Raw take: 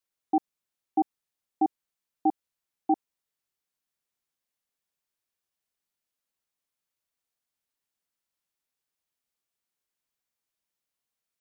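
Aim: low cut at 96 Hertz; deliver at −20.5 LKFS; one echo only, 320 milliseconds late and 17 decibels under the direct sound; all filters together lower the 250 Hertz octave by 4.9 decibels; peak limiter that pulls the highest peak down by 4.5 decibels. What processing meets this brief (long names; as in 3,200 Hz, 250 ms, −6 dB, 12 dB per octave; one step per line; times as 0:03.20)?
high-pass filter 96 Hz
parametric band 250 Hz −7 dB
brickwall limiter −21 dBFS
single-tap delay 320 ms −17 dB
level +18.5 dB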